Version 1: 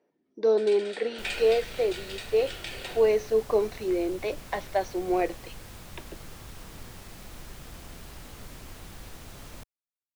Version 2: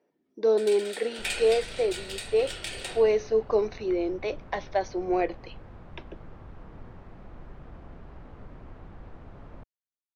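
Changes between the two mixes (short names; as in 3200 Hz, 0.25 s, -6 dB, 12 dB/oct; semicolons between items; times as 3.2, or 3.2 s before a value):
first sound: remove air absorption 87 m; second sound: add LPF 1200 Hz 12 dB/oct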